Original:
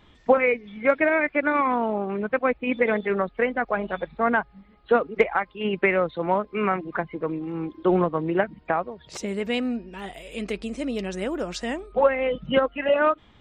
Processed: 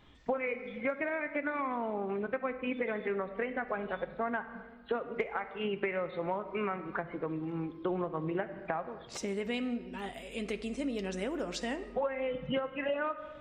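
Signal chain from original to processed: reverb RT60 1.2 s, pre-delay 7 ms, DRR 9.5 dB; compressor 4:1, threshold -26 dBFS, peak gain reduction 12.5 dB; gain -5 dB

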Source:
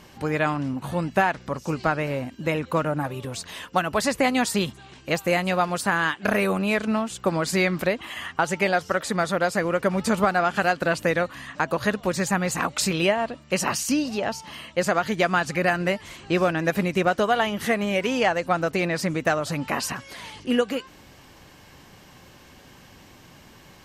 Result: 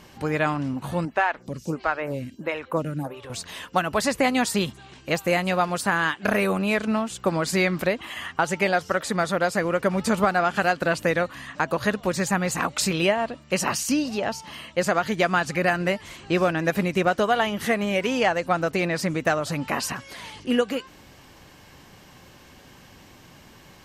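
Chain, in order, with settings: 1.05–3.3 photocell phaser 1.5 Hz

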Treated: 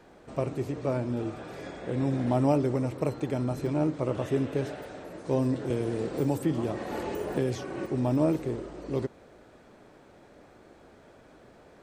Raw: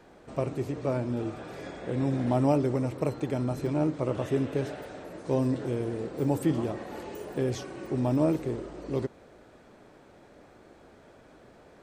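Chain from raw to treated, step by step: 5.7–7.86 three-band squash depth 70%

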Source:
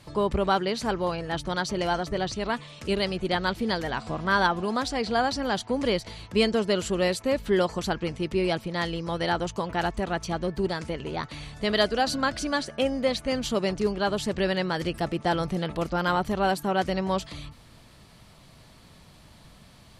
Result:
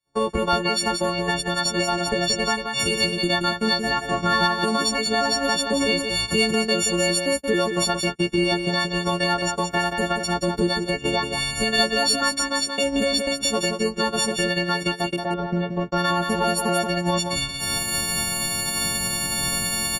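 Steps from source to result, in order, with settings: frequency quantiser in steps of 4 st; recorder AGC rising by 73 dB/s; gate -22 dBFS, range -41 dB; bell 61 Hz -3 dB 2.9 oct; in parallel at -10 dB: soft clip -18 dBFS, distortion -15 dB; 15.16–15.92 on the sum: tape spacing loss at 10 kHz 41 dB; on a send: echo 0.178 s -6 dB; on the sum: gain -1.5 dB

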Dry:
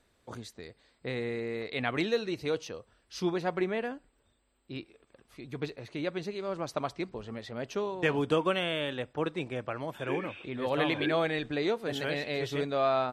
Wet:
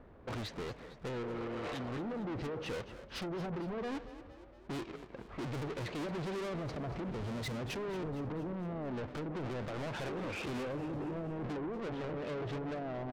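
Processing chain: half-waves squared off; 1.26–1.88 spectral repair 390–2800 Hz both; treble ducked by the level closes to 310 Hz, closed at -22 dBFS; 6.54–8.08 low shelf 430 Hz +8 dB; low-pass opened by the level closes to 1200 Hz, open at -28 dBFS; in parallel at 0 dB: negative-ratio compressor -38 dBFS, ratio -1; on the sum: limiter -24 dBFS, peak gain reduction 12.5 dB; soft clip -36 dBFS, distortion -9 dB; on a send: frequency-shifting echo 0.231 s, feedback 58%, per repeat +36 Hz, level -14 dB; on the sum: record warp 45 rpm, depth 100 cents; gain -1 dB

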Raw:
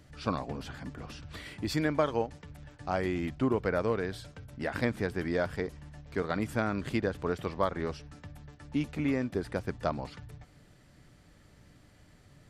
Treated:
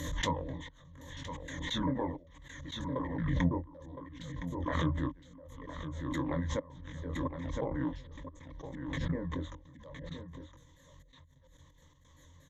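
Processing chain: repeated pitch sweeps -10 st, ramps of 0.234 s; treble ducked by the level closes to 1000 Hz, closed at -26.5 dBFS; high shelf 5200 Hz +8.5 dB; doubler 23 ms -5 dB; step gate "x.xxxx.....x." 132 bpm -24 dB; ripple EQ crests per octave 1.1, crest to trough 18 dB; echo 1.014 s -10.5 dB; backwards sustainer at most 35 dB/s; gain -6.5 dB

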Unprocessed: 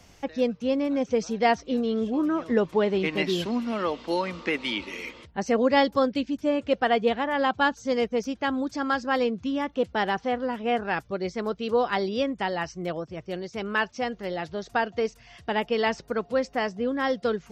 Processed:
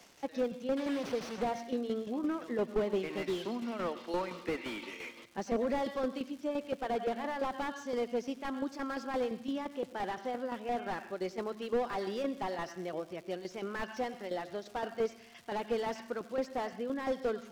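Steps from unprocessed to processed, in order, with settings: 0.77–1.49 delta modulation 32 kbps, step -25 dBFS; HPF 240 Hz 12 dB/oct; in parallel at -3 dB: vocal rider 2 s; on the sum: tremolo saw down 5.8 Hz, depth 70%; crackle 240/s -32 dBFS; on a send at -16.5 dB: reverb RT60 0.60 s, pre-delay 87 ms; on the sum: slew limiter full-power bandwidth 58 Hz; gain -8.5 dB

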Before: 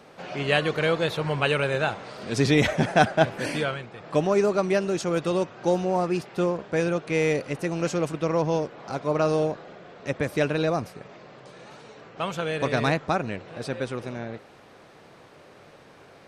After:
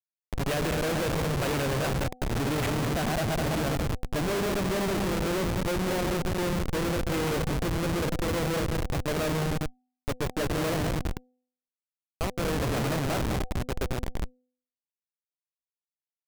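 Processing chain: regenerating reverse delay 0.102 s, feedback 76%, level -6.5 dB; Schmitt trigger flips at -24.5 dBFS; de-hum 251.1 Hz, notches 3; gain -2.5 dB

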